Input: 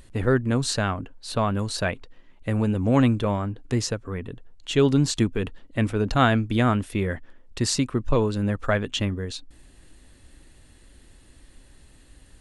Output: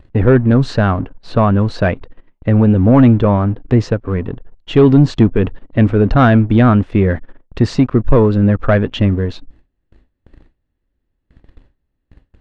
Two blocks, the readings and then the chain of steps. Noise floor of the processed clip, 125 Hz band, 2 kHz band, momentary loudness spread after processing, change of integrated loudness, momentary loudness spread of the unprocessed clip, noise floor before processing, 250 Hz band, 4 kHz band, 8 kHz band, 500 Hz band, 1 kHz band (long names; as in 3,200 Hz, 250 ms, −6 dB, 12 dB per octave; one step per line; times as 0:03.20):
−70 dBFS, +12.5 dB, +6.0 dB, 10 LU, +11.0 dB, 14 LU, −53 dBFS, +12.0 dB, −0.5 dB, below −10 dB, +10.5 dB, +8.0 dB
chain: noise gate with hold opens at −39 dBFS
leveller curve on the samples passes 2
head-to-tape spacing loss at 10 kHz 37 dB
level +6.5 dB